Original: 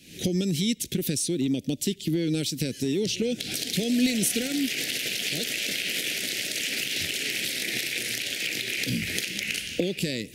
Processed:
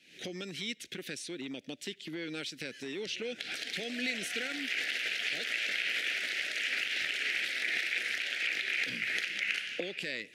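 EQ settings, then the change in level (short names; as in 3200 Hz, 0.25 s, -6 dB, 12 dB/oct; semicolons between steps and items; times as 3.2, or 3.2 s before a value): dynamic EQ 1300 Hz, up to +7 dB, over -46 dBFS, Q 0.81; band-pass 1500 Hz, Q 0.96; -2.0 dB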